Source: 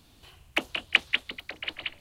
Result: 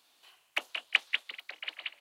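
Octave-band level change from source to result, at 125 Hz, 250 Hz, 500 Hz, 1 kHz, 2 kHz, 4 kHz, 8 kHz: no reading, under -15 dB, -10.0 dB, -5.5 dB, -4.5 dB, -4.5 dB, -4.5 dB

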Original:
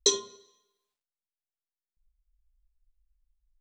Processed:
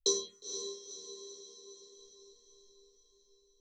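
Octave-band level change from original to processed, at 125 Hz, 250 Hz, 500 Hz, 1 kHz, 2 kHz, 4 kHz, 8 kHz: no reading, -3.0 dB, -3.5 dB, -10.0 dB, under -15 dB, -5.5 dB, -4.5 dB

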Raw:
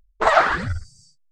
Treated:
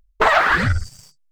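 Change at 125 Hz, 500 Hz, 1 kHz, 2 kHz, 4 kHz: +7.0 dB, -0.5 dB, +1.0 dB, +5.0 dB, +4.5 dB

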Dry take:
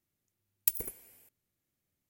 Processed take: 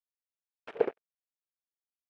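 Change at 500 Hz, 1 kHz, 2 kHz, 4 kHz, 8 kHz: +22.0 dB, +16.5 dB, +6.0 dB, no reading, under -35 dB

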